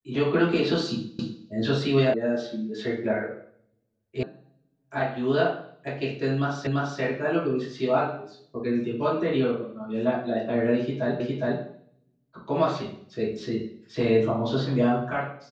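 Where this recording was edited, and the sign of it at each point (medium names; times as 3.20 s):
1.19 s: repeat of the last 0.25 s
2.14 s: sound stops dead
4.23 s: sound stops dead
6.67 s: repeat of the last 0.34 s
11.20 s: repeat of the last 0.41 s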